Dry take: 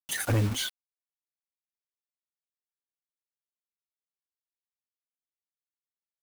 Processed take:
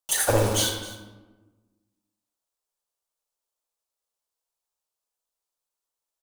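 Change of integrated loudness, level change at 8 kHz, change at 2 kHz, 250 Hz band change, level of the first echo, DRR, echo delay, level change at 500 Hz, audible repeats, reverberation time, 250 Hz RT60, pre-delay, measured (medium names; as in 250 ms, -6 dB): +5.5 dB, +10.5 dB, +4.0 dB, +2.5 dB, -16.5 dB, 2.0 dB, 263 ms, +12.0 dB, 1, 1.2 s, 1.7 s, 21 ms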